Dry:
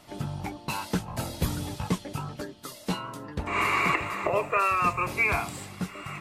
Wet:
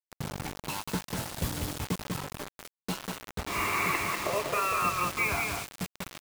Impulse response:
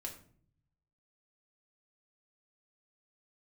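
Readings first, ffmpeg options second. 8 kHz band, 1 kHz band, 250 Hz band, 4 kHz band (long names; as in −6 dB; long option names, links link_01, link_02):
+4.0 dB, −3.5 dB, −4.0 dB, +0.5 dB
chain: -af "aecho=1:1:193|386|579|772:0.596|0.167|0.0467|0.0131,acrusher=bits=4:mix=0:aa=0.000001,volume=-5dB"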